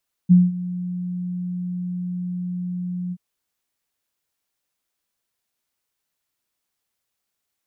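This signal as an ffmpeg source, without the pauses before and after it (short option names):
-f lavfi -i "aevalsrc='0.447*sin(2*PI*179*t)':d=2.879:s=44100,afade=t=in:d=0.026,afade=t=out:st=0.026:d=0.197:silence=0.133,afade=t=out:st=2.83:d=0.049"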